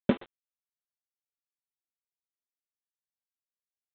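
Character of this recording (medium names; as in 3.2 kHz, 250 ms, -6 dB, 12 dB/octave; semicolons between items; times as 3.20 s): a buzz of ramps at a fixed pitch in blocks of 8 samples; tremolo saw down 4.7 Hz, depth 95%; a quantiser's noise floor 8-bit, dither none; G.726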